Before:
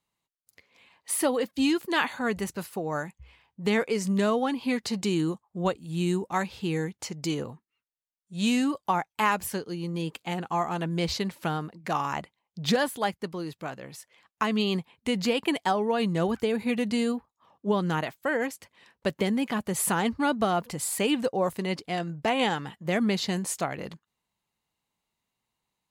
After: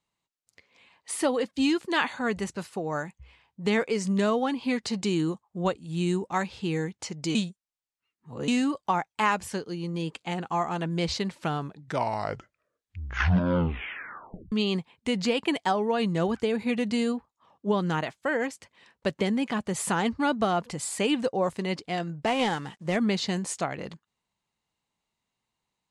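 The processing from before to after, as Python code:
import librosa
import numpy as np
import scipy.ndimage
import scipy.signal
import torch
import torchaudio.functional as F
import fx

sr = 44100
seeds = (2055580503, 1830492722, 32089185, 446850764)

y = fx.cvsd(x, sr, bps=64000, at=(22.26, 22.96))
y = fx.edit(y, sr, fx.reverse_span(start_s=7.35, length_s=1.13),
    fx.tape_stop(start_s=11.41, length_s=3.11), tone=tone)
y = scipy.signal.sosfilt(scipy.signal.butter(4, 9100.0, 'lowpass', fs=sr, output='sos'), y)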